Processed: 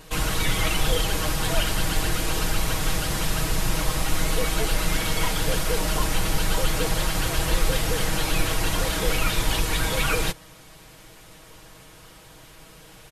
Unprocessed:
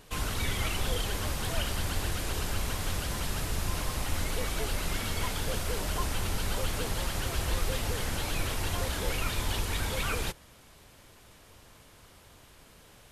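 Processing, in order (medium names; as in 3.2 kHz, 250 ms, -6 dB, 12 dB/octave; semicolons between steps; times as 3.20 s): comb 6.3 ms; trim +6.5 dB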